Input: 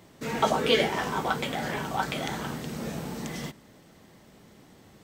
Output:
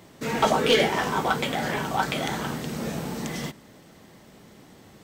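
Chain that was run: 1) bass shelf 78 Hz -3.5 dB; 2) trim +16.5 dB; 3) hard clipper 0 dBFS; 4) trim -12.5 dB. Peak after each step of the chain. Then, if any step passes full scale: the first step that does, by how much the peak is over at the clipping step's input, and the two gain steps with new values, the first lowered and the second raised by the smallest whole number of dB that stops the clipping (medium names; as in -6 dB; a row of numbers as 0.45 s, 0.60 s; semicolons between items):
-7.5 dBFS, +9.0 dBFS, 0.0 dBFS, -12.5 dBFS; step 2, 9.0 dB; step 2 +7.5 dB, step 4 -3.5 dB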